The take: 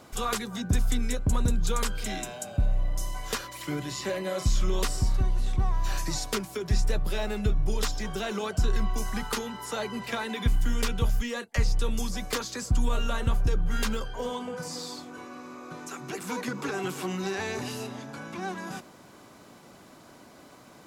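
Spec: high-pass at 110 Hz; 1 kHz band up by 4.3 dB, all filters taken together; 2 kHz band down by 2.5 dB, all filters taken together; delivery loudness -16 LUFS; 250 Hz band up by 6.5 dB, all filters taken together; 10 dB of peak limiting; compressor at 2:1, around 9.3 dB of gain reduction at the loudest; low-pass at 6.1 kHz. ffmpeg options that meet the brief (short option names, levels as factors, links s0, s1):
-af "highpass=110,lowpass=6100,equalizer=f=250:t=o:g=8,equalizer=f=1000:t=o:g=6.5,equalizer=f=2000:t=o:g=-6,acompressor=threshold=0.0126:ratio=2,volume=15,alimiter=limit=0.473:level=0:latency=1"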